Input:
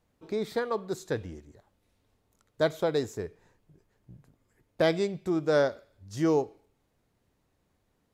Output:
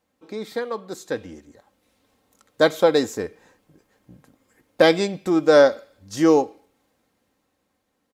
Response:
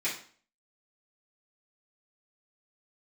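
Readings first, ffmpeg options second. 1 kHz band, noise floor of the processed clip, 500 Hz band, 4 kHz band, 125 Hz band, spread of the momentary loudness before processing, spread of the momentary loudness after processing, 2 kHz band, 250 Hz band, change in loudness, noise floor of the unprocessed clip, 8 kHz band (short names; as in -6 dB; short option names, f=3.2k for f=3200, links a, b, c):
+10.0 dB, -73 dBFS, +9.0 dB, +11.0 dB, +1.5 dB, 15 LU, 19 LU, +10.0 dB, +8.5 dB, +9.0 dB, -74 dBFS, +10.0 dB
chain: -af "highpass=f=240:p=1,aecho=1:1:3.8:0.45,dynaudnorm=f=360:g=9:m=9dB,volume=2dB"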